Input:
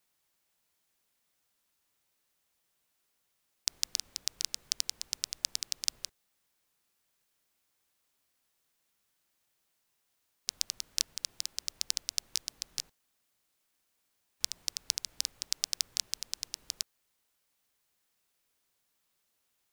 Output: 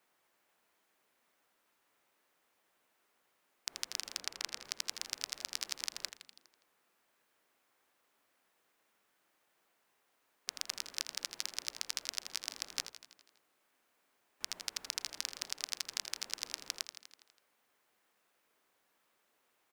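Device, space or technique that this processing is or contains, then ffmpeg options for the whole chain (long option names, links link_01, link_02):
DJ mixer with the lows and highs turned down: -filter_complex "[0:a]asettb=1/sr,asplit=3[link_01][link_02][link_03];[link_01]atrim=end=4.204[link_04];[link_02]atrim=start=4.2:end=4.65,asetpts=PTS-STARTPTS,afade=type=in:duration=0.004:curve=qsin,afade=type=out:start_time=0.446:duration=0.004:curve=qsin,highshelf=frequency=4200:gain=-8[link_05];[link_03]atrim=start=4.646[link_06];[link_04][link_05]acrossfade=duration=0.004:curve1=hsin:curve2=qsin[link_07];[link_07][link_06]acrossfade=duration=0.004:curve1=qsin:curve2=hsin,asplit=8[link_08][link_09][link_10][link_11][link_12][link_13][link_14][link_15];[link_09]adelay=82,afreqshift=-72,volume=-12.5dB[link_16];[link_10]adelay=164,afreqshift=-144,volume=-16.8dB[link_17];[link_11]adelay=246,afreqshift=-216,volume=-21.1dB[link_18];[link_12]adelay=328,afreqshift=-288,volume=-25.4dB[link_19];[link_13]adelay=410,afreqshift=-360,volume=-29.7dB[link_20];[link_14]adelay=492,afreqshift=-432,volume=-34dB[link_21];[link_15]adelay=574,afreqshift=-504,volume=-38.3dB[link_22];[link_08][link_16][link_17][link_18][link_19][link_20][link_21][link_22]amix=inputs=8:normalize=0,acrossover=split=220 2400:gain=0.158 1 0.251[link_23][link_24][link_25];[link_23][link_24][link_25]amix=inputs=3:normalize=0,alimiter=limit=-22dB:level=0:latency=1:release=116,volume=9dB"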